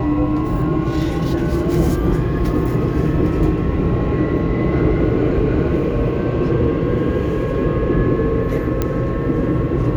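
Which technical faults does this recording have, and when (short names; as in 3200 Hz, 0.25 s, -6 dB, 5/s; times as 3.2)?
8.82 pop -6 dBFS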